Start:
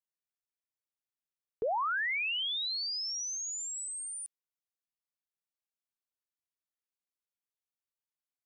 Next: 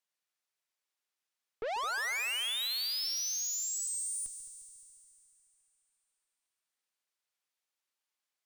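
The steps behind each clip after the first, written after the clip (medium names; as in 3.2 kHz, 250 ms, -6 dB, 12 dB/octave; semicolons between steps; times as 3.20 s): frequency weighting A; valve stage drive 42 dB, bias 0.4; multi-head delay 71 ms, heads second and third, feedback 64%, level -13 dB; trim +8 dB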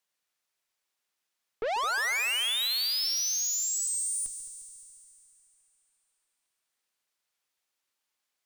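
hum notches 50/100/150 Hz; trim +5.5 dB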